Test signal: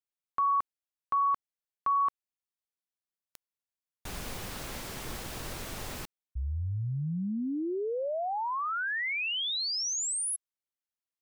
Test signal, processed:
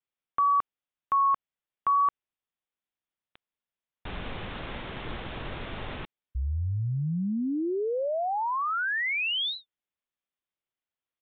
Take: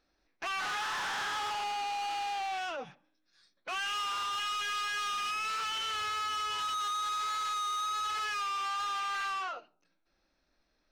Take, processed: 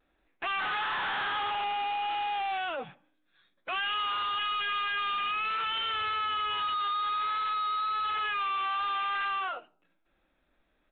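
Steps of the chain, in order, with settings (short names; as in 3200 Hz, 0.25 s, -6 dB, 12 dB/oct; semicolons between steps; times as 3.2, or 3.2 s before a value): vibrato 0.55 Hz 26 cents; downsampling 8000 Hz; gain +3.5 dB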